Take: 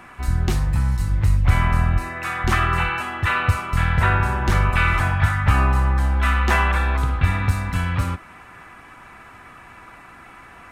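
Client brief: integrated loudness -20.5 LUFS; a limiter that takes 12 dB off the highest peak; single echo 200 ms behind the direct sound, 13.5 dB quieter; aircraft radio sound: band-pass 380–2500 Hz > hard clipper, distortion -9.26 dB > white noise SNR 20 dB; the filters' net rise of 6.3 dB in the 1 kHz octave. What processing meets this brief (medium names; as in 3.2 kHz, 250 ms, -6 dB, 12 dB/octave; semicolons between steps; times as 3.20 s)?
peaking EQ 1 kHz +8 dB; peak limiter -14 dBFS; band-pass 380–2500 Hz; delay 200 ms -13.5 dB; hard clipper -25.5 dBFS; white noise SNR 20 dB; trim +9 dB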